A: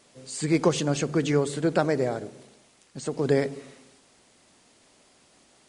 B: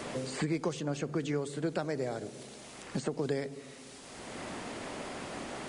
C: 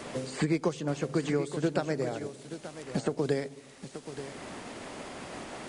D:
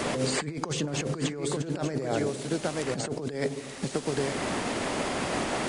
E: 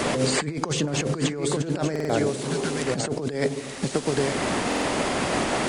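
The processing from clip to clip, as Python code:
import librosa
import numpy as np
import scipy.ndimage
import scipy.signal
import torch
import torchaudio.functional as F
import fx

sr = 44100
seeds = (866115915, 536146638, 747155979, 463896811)

y1 = fx.band_squash(x, sr, depth_pct=100)
y1 = F.gain(torch.from_numpy(y1), -8.5).numpy()
y2 = y1 + 10.0 ** (-8.5 / 20.0) * np.pad(y1, (int(880 * sr / 1000.0), 0))[:len(y1)]
y2 = fx.upward_expand(y2, sr, threshold_db=-46.0, expansion=1.5)
y2 = F.gain(torch.from_numpy(y2), 5.0).numpy()
y3 = fx.over_compress(y2, sr, threshold_db=-37.0, ratio=-1.0)
y3 = F.gain(torch.from_numpy(y3), 7.5).numpy()
y4 = fx.spec_repair(y3, sr, seeds[0], start_s=2.46, length_s=0.35, low_hz=230.0, high_hz=1300.0, source='after')
y4 = fx.buffer_glitch(y4, sr, at_s=(1.91, 4.67), block=2048, repeats=3)
y4 = F.gain(torch.from_numpy(y4), 5.0).numpy()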